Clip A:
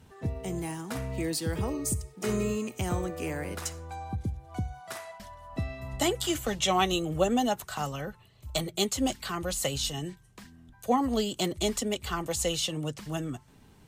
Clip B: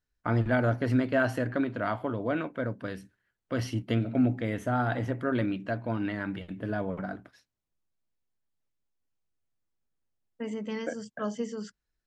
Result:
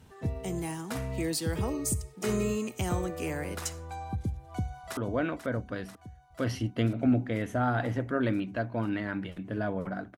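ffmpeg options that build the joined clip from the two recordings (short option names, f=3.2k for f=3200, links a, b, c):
-filter_complex "[0:a]apad=whole_dur=10.17,atrim=end=10.17,atrim=end=4.972[a];[1:a]atrim=start=2.088:end=7.29[b];[a][b]acrossfade=d=0.004:c1=hsin:c2=hsin,asplit=2[c][d];[d]afade=t=in:st=4.34:d=0.01,afade=t=out:st=4.97:d=0.01,aecho=0:1:490|980|1470|1960|2450|2940|3430|3920|4410|4900|5390|5880:0.281838|0.225471|0.180377|0.144301|0.115441|0.0923528|0.0738822|0.0591058|0.0472846|0.0378277|0.0302622|0.0242097[e];[c][e]amix=inputs=2:normalize=0"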